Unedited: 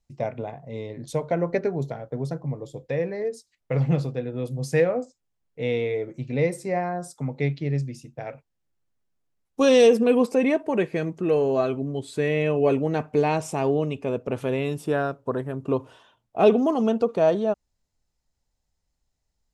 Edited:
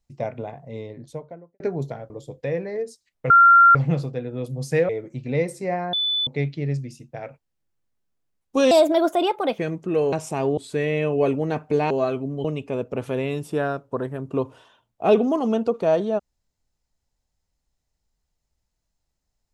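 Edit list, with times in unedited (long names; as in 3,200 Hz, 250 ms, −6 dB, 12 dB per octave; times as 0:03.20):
0:00.65–0:01.60: fade out and dull
0:02.10–0:02.56: remove
0:03.76: insert tone 1,380 Hz −8.5 dBFS 0.45 s
0:04.90–0:05.93: remove
0:06.97–0:07.31: beep over 3,490 Hz −20 dBFS
0:09.75–0:10.93: play speed 135%
0:11.47–0:12.01: swap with 0:13.34–0:13.79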